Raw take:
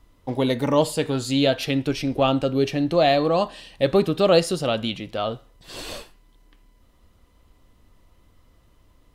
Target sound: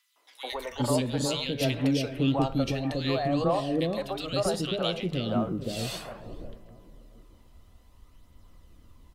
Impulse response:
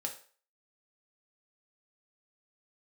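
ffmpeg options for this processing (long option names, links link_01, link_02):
-filter_complex "[0:a]asplit=2[link_01][link_02];[link_02]adelay=447,lowpass=frequency=1100:poles=1,volume=-16dB,asplit=2[link_03][link_04];[link_04]adelay=447,lowpass=frequency=1100:poles=1,volume=0.46,asplit=2[link_05][link_06];[link_06]adelay=447,lowpass=frequency=1100:poles=1,volume=0.46,asplit=2[link_07][link_08];[link_08]adelay=447,lowpass=frequency=1100:poles=1,volume=0.46[link_09];[link_03][link_05][link_07][link_09]amix=inputs=4:normalize=0[link_10];[link_01][link_10]amix=inputs=2:normalize=0,acompressor=threshold=-22dB:ratio=6,aphaser=in_gain=1:out_gain=1:delay=1.6:decay=0.34:speed=0.6:type=triangular,bandreject=frequency=50:width_type=h:width=6,bandreject=frequency=100:width_type=h:width=6,bandreject=frequency=150:width_type=h:width=6,bandreject=frequency=200:width_type=h:width=6,acrossover=split=490|1800[link_11][link_12][link_13];[link_12]adelay=160[link_14];[link_11]adelay=520[link_15];[link_15][link_14][link_13]amix=inputs=3:normalize=0"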